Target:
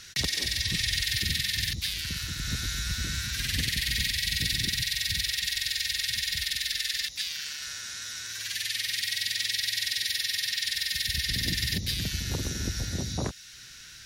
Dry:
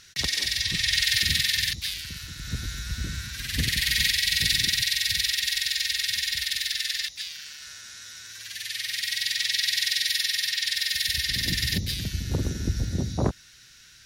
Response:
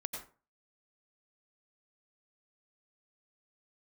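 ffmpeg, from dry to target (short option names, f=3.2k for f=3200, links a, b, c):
-filter_complex "[0:a]acrossover=split=590|1800|7800[a][b][c][d];[a]acompressor=threshold=-36dB:ratio=4[e];[b]acompressor=threshold=-49dB:ratio=4[f];[c]acompressor=threshold=-34dB:ratio=4[g];[d]acompressor=threshold=-44dB:ratio=4[h];[e][f][g][h]amix=inputs=4:normalize=0,volume=5dB"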